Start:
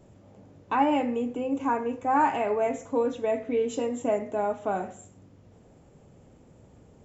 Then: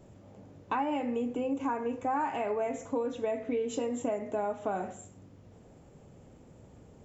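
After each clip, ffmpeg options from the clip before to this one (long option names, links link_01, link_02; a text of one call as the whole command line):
ffmpeg -i in.wav -af "acompressor=threshold=-28dB:ratio=6" out.wav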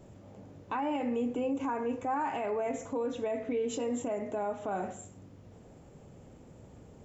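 ffmpeg -i in.wav -af "alimiter=level_in=2.5dB:limit=-24dB:level=0:latency=1:release=23,volume=-2.5dB,volume=1.5dB" out.wav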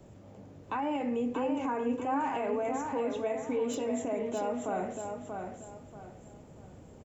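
ffmpeg -i in.wav -filter_complex "[0:a]acrossover=split=290|480|1600[link_01][link_02][link_03][link_04];[link_04]volume=36dB,asoftclip=hard,volume=-36dB[link_05];[link_01][link_02][link_03][link_05]amix=inputs=4:normalize=0,aecho=1:1:634|1268|1902|2536:0.531|0.159|0.0478|0.0143" out.wav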